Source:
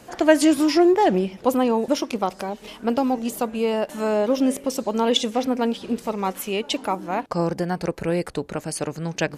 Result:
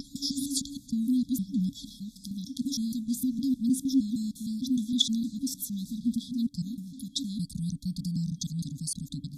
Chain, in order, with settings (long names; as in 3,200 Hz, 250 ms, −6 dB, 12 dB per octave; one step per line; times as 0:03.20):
slices reordered back to front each 154 ms, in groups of 6
brick-wall band-stop 290–3,300 Hz
level −2.5 dB